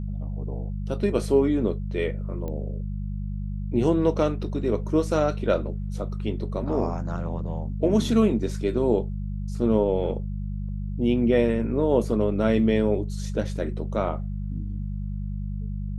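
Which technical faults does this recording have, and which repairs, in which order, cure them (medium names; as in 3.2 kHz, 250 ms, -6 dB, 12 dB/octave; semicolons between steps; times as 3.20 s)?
hum 50 Hz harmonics 4 -30 dBFS
2.48 s: pop -22 dBFS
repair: de-click; de-hum 50 Hz, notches 4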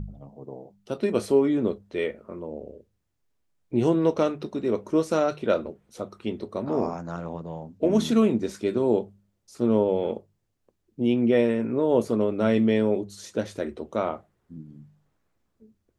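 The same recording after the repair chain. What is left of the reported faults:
nothing left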